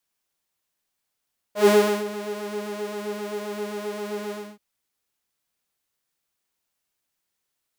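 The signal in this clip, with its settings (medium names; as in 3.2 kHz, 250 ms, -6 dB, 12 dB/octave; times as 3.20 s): synth patch with pulse-width modulation G#3, sub -29 dB, noise -18 dB, filter highpass, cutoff 270 Hz, Q 6.4, filter envelope 1 oct, filter decay 0.13 s, attack 130 ms, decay 0.36 s, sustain -16 dB, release 0.27 s, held 2.76 s, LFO 7.6 Hz, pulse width 44%, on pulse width 9%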